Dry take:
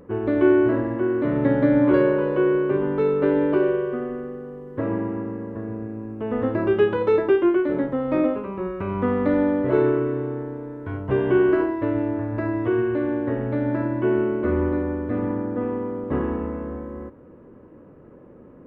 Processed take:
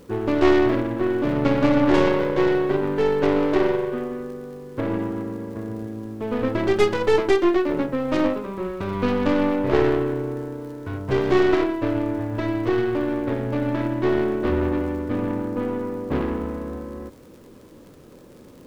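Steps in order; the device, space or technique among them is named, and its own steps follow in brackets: record under a worn stylus (tracing distortion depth 0.44 ms; crackle 77/s -40 dBFS; pink noise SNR 36 dB)

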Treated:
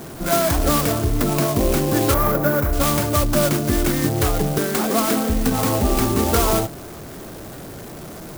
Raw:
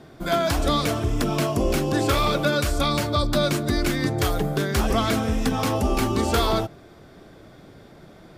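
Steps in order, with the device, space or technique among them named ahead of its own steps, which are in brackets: 4.58–5.3 steep high-pass 170 Hz 36 dB/oct; early CD player with a faulty converter (zero-crossing step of -35.5 dBFS; clock jitter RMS 0.093 ms); 2.14–2.73 band shelf 4900 Hz -12.5 dB 2.3 oct; gain +3 dB

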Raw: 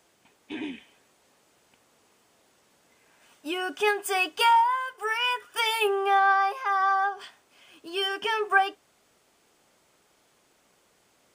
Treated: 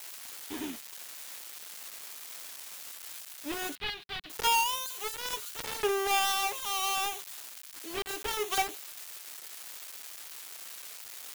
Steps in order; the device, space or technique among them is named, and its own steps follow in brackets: budget class-D amplifier (switching dead time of 0.3 ms; switching spikes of -21 dBFS); 3.75–4.3 EQ curve 180 Hz 0 dB, 410 Hz -16 dB, 4100 Hz +2 dB, 6500 Hz -21 dB; gain -3 dB

